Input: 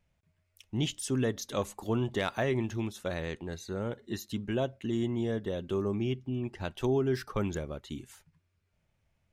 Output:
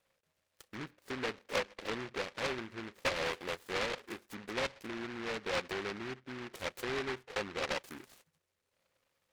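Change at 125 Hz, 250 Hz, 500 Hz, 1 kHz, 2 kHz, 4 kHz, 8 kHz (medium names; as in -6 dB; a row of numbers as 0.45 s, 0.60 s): -16.5 dB, -11.5 dB, -6.0 dB, 0.0 dB, +3.5 dB, +1.0 dB, -5.5 dB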